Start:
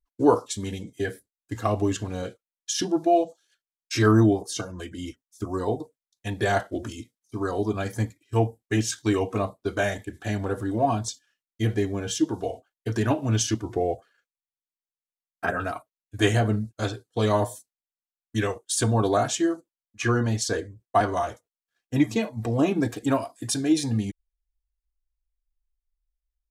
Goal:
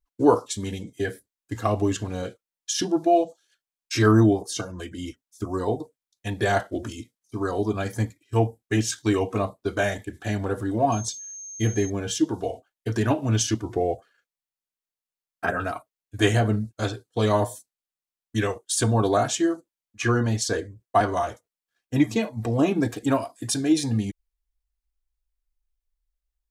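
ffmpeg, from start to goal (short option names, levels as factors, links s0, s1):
-filter_complex "[0:a]asettb=1/sr,asplit=3[s0][s1][s2];[s0]atrim=end=10.924[s3];[s1]atrim=start=10.92:end=11.9,asetpts=PTS-STARTPTS,afade=t=in:d=0.004:c=qsin,afade=t=out:st=0.976:d=0.004:c=qsin,aeval=exprs='val(0)+0.0141*sin(2*PI*6400*n/s)':c=same[s4];[s2]atrim=start=11.896[s5];[s3][s4]acrossfade=d=0.004:c1=hsin:c2=qsin[s6];[s6][s5]acrossfade=d=0.004:c1=qsin:c2=hsin,volume=1.12"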